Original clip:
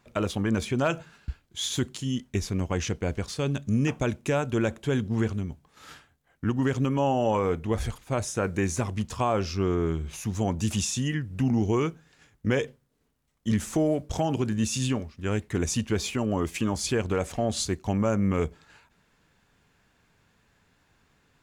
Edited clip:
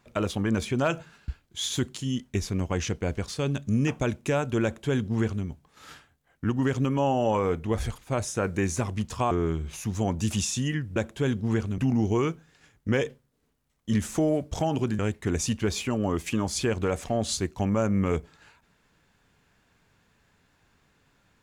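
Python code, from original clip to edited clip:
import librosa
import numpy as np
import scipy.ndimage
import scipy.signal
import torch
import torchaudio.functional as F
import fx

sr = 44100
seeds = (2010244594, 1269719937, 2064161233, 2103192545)

y = fx.edit(x, sr, fx.duplicate(start_s=4.63, length_s=0.82, to_s=11.36),
    fx.cut(start_s=9.31, length_s=0.4),
    fx.cut(start_s=14.57, length_s=0.7), tone=tone)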